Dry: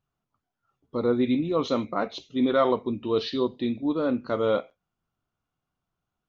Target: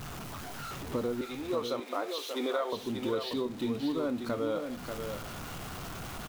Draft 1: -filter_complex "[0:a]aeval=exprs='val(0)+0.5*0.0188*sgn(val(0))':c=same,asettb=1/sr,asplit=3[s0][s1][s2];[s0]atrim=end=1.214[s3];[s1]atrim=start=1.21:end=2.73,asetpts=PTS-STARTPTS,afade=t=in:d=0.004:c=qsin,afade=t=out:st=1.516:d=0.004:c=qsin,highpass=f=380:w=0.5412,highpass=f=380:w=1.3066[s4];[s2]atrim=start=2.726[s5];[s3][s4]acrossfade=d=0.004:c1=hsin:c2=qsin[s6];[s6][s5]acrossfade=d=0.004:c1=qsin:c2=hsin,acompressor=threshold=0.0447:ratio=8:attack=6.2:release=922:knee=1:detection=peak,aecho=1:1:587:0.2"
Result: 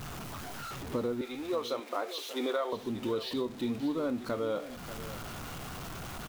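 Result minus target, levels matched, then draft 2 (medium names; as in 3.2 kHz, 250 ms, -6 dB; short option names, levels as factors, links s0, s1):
echo-to-direct -7.5 dB
-filter_complex "[0:a]aeval=exprs='val(0)+0.5*0.0188*sgn(val(0))':c=same,asettb=1/sr,asplit=3[s0][s1][s2];[s0]atrim=end=1.214[s3];[s1]atrim=start=1.21:end=2.73,asetpts=PTS-STARTPTS,afade=t=in:d=0.004:c=qsin,afade=t=out:st=1.516:d=0.004:c=qsin,highpass=f=380:w=0.5412,highpass=f=380:w=1.3066[s4];[s2]atrim=start=2.726[s5];[s3][s4]acrossfade=d=0.004:c1=hsin:c2=qsin[s6];[s6][s5]acrossfade=d=0.004:c1=qsin:c2=hsin,acompressor=threshold=0.0447:ratio=8:attack=6.2:release=922:knee=1:detection=peak,aecho=1:1:587:0.473"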